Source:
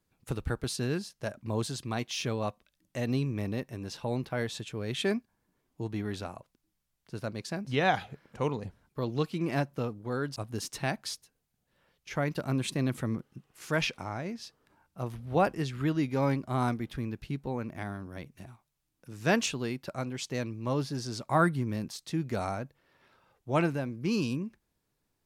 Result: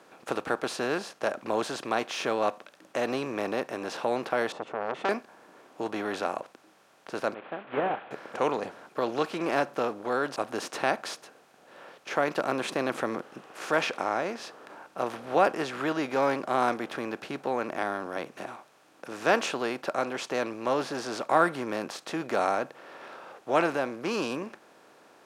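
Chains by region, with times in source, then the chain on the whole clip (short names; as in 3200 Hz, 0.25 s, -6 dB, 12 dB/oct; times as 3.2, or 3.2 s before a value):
4.52–5.09 polynomial smoothing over 65 samples + core saturation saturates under 1700 Hz
7.34–8.11 delta modulation 16 kbps, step -40.5 dBFS + upward expander 2.5:1, over -39 dBFS
whole clip: per-bin compression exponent 0.6; HPF 420 Hz 12 dB/oct; high shelf 2800 Hz -10.5 dB; gain +3.5 dB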